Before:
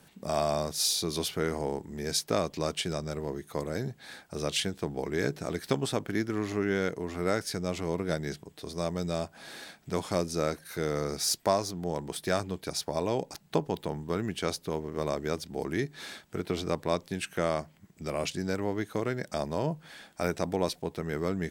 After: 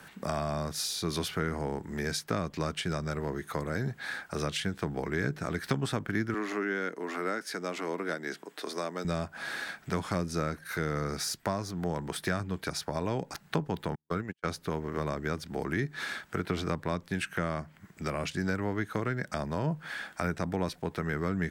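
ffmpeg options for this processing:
-filter_complex "[0:a]asettb=1/sr,asplit=3[a][b][c];[a]atrim=end=6.344[d];[b]atrim=start=6.34:end=9.05,asetpts=PTS-STARTPTS,afade=t=in:d=0.004:c=qsin,afade=t=out:st=2.706:d=0.004:c=qsin,highpass=f=250:w=0.5412,highpass=f=250:w=1.3066[e];[c]atrim=start=9.046[f];[d][e]acrossfade=d=0.004:c1=hsin:c2=qsin[g];[g][f]acrossfade=d=0.004:c1=qsin:c2=hsin,asettb=1/sr,asplit=3[h][i][j];[h]atrim=end=13.954[k];[i]atrim=start=13.95:end=14.46,asetpts=PTS-STARTPTS,afade=t=in:d=0.004:c=qsin,afade=t=out:st=0.506:d=0.004:c=qsin,agate=range=-53dB:threshold=-31dB:ratio=16:release=100:detection=peak[l];[j]atrim=start=14.456[m];[k][l]acrossfade=d=0.004:c1=hsin:c2=qsin[n];[n][m]acrossfade=d=0.004:c1=qsin:c2=hsin,equalizer=f=1.5k:t=o:w=1.3:g=11.5,acrossover=split=250[o][p];[p]acompressor=threshold=-36dB:ratio=4[q];[o][q]amix=inputs=2:normalize=0,volume=3dB"

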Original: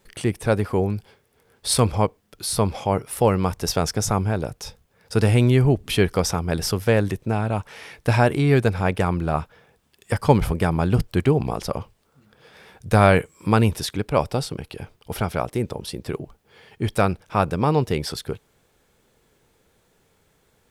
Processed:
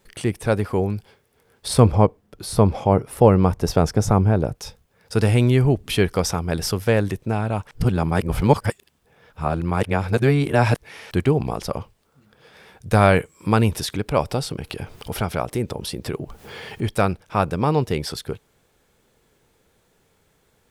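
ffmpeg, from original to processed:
-filter_complex "[0:a]asettb=1/sr,asplit=3[a][b][c];[a]atrim=end=1.684[d];[b]atrim=start=1.68:end=4.55,asetpts=PTS-STARTPTS,afade=t=in:d=0.004:c=qsin,afade=t=out:st=2.866:d=0.004:c=qsin,tiltshelf=f=1.4k:g=6[e];[c]atrim=start=4.546[f];[d][e]acrossfade=d=0.004:c1=hsin:c2=qsin[g];[g][f]acrossfade=d=0.004:c1=qsin:c2=hsin,asettb=1/sr,asplit=3[h][i][j];[h]atrim=end=13.534[k];[i]atrim=start=13.53:end=16.82,asetpts=PTS-STARTPTS,afade=t=in:d=0.004:c=qsin,afade=t=out:st=3.286:d=0.004:c=qsin,acompressor=mode=upward:threshold=-22dB:ratio=2.5:attack=3.2:release=140:knee=2.83:detection=peak[l];[j]atrim=start=16.816[m];[k][l]acrossfade=d=0.004:c1=hsin:c2=qsin[n];[n][m]acrossfade=d=0.004:c1=qsin:c2=hsin,asplit=3[o][p][q];[o]atrim=end=7.712[r];[p]atrim=start=7.708:end=11.112,asetpts=PTS-STARTPTS,areverse[s];[q]atrim=start=11.108[t];[r][s]acrossfade=d=0.004:c1=hsin:c2=hsin[u];[u][t]acrossfade=d=0.004:c1=hsin:c2=hsin"

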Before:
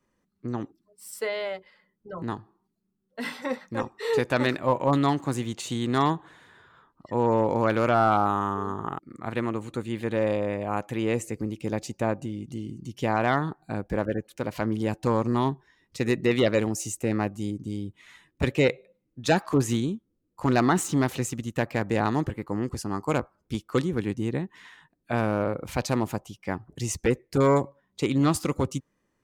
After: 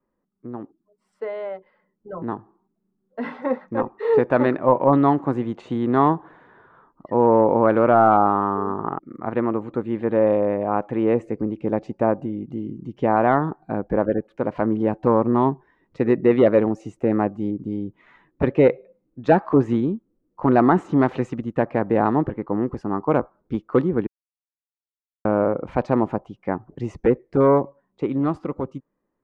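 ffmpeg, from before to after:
-filter_complex "[0:a]asettb=1/sr,asplit=3[a][b][c];[a]atrim=end=20.994[d];[b]atrim=start=20.99:end=21.4,asetpts=PTS-STARTPTS,afade=t=in:d=0.004:c=qsin,afade=t=out:st=0.406:d=0.004:c=qsin,equalizer=f=4.9k:w=0.31:g=5[e];[c]atrim=start=21.396[f];[d][e]acrossfade=d=0.004:c1=hsin:c2=qsin[g];[g][f]acrossfade=d=0.004:c1=qsin:c2=hsin,asplit=3[h][i][j];[h]atrim=end=24.07,asetpts=PTS-STARTPTS,afade=t=out:st=24.066:d=0.004:c=hsin[k];[i]atrim=start=24.07:end=25.25,asetpts=PTS-STARTPTS,volume=0[l];[j]atrim=start=25.25,asetpts=PTS-STARTPTS,afade=t=in:d=0.004:c=hsin[m];[k][l][m]concat=n=3:v=0:a=1,dynaudnorm=f=310:g=13:m=9dB,lowpass=1.1k,equalizer=f=83:t=o:w=1.7:g=-10.5"

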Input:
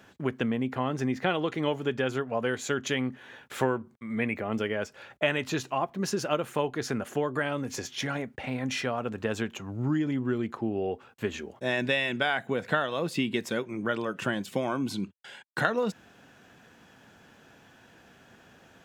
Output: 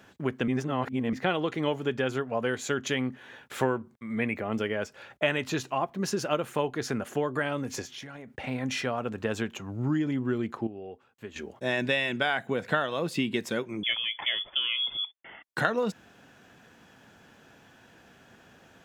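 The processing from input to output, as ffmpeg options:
-filter_complex "[0:a]asettb=1/sr,asplit=3[a][b][c];[a]atrim=end=7.824[d];[b]atrim=start=7.82:end=8.3,asetpts=PTS-STARTPTS,afade=t=in:d=0.004:c=qsin,afade=t=out:st=0.476:d=0.004:c=qsin,acompressor=threshold=-38dB:ratio=12:attack=3.2:release=140:knee=1:detection=peak[e];[c]atrim=start=8.296[f];[d][e]acrossfade=d=0.004:c1=hsin:c2=qsin[g];[g][f]acrossfade=d=0.004:c1=qsin:c2=hsin,asettb=1/sr,asplit=3[h][i][j];[h]atrim=end=13.834[k];[i]atrim=start=13.83:end=15.43,asetpts=PTS-STARTPTS,afade=t=in:d=0.004:c=qsin,afade=t=out:st=1.596:d=0.004:c=qsin,lowpass=f=3.1k:t=q:w=0.5098,lowpass=f=3.1k:t=q:w=0.6013,lowpass=f=3.1k:t=q:w=0.9,lowpass=f=3.1k:t=q:w=2.563,afreqshift=-3600[l];[j]atrim=start=15.426[m];[k][l]acrossfade=d=0.004:c1=hsin:c2=qsin[n];[n][m]acrossfade=d=0.004:c1=qsin:c2=hsin,asplit=5[o][p][q][r][s];[o]atrim=end=0.482[t];[p]atrim=start=0.478:end=1.132,asetpts=PTS-STARTPTS,areverse[u];[q]atrim=start=1.128:end=10.672[v];[r]atrim=start=10.668:end=11.362,asetpts=PTS-STARTPTS,volume=-11dB[w];[s]atrim=start=11.358[x];[t][u]acrossfade=d=0.004:c1=hsin:c2=hsin[y];[y][v]acrossfade=d=0.004:c1=hsin:c2=hsin[z];[z][w]acrossfade=d=0.004:c1=hsin:c2=hsin[aa];[aa][x]acrossfade=d=0.004:c1=hsin:c2=hsin"

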